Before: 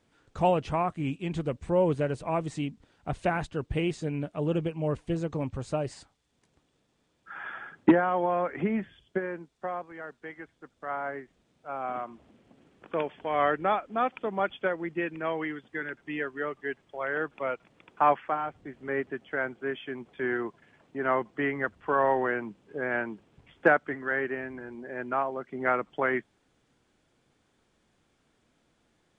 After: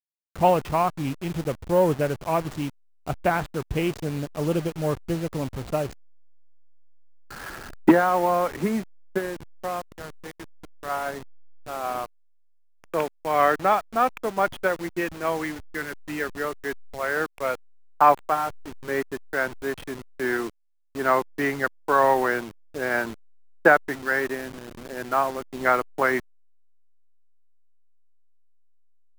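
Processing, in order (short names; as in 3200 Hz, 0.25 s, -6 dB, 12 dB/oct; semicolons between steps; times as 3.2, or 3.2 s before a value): level-crossing sampler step -36 dBFS; dynamic EQ 1100 Hz, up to +4 dB, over -35 dBFS, Q 0.74; gain +3 dB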